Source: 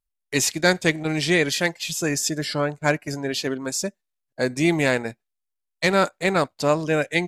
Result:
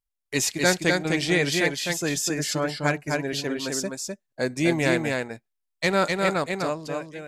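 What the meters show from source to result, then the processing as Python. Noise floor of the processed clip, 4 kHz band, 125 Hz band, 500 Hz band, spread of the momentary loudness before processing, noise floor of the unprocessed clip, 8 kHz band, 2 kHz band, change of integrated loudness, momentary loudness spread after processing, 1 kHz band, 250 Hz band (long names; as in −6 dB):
−80 dBFS, −1.5 dB, −2.0 dB, −2.5 dB, 7 LU, −81 dBFS, −1.5 dB, −2.0 dB, −2.0 dB, 9 LU, −2.5 dB, −2.0 dB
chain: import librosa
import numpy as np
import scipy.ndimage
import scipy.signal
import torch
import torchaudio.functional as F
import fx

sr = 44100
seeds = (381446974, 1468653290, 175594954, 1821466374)

y = fx.fade_out_tail(x, sr, length_s=1.13)
y = y + 10.0 ** (-3.5 / 20.0) * np.pad(y, (int(254 * sr / 1000.0), 0))[:len(y)]
y = y * 10.0 ** (-3.0 / 20.0)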